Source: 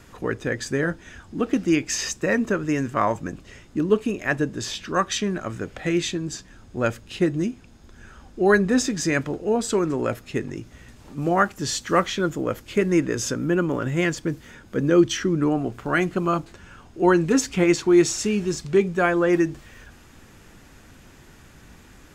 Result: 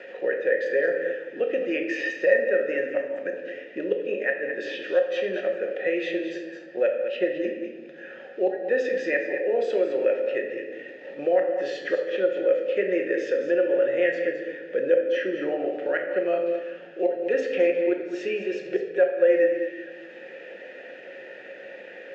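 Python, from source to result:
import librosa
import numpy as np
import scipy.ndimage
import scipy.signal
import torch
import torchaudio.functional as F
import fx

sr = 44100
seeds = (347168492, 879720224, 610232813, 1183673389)

p1 = scipy.signal.sosfilt(scipy.signal.butter(2, 360.0, 'highpass', fs=sr, output='sos'), x)
p2 = fx.high_shelf(p1, sr, hz=8400.0, db=3.0)
p3 = fx.level_steps(p2, sr, step_db=18)
p4 = p2 + (p3 * librosa.db_to_amplitude(-2.0))
p5 = fx.gate_flip(p4, sr, shuts_db=-8.0, range_db=-27)
p6 = fx.quant_float(p5, sr, bits=4)
p7 = fx.vowel_filter(p6, sr, vowel='e')
p8 = fx.air_absorb(p7, sr, metres=170.0)
p9 = p8 + 10.0 ** (-11.0 / 20.0) * np.pad(p8, (int(214 * sr / 1000.0), 0))[:len(p8)]
p10 = fx.room_shoebox(p9, sr, seeds[0], volume_m3=350.0, walls='mixed', distance_m=0.97)
p11 = fx.band_squash(p10, sr, depth_pct=40)
y = p11 * librosa.db_to_amplitude(8.0)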